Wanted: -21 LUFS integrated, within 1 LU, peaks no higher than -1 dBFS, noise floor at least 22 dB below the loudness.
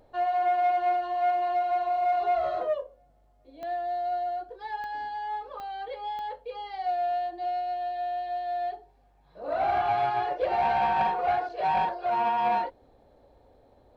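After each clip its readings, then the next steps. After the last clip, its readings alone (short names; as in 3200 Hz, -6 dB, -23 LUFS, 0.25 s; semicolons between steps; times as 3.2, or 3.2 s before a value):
clicks 4; loudness -28.5 LUFS; peak -17.5 dBFS; loudness target -21.0 LUFS
-> de-click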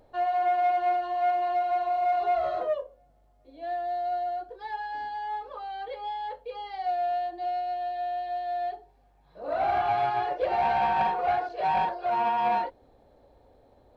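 clicks 0; loudness -28.5 LUFS; peak -17.5 dBFS; loudness target -21.0 LUFS
-> gain +7.5 dB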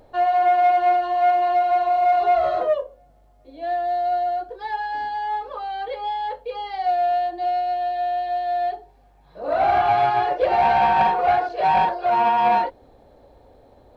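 loudness -21.0 LUFS; peak -10.0 dBFS; noise floor -54 dBFS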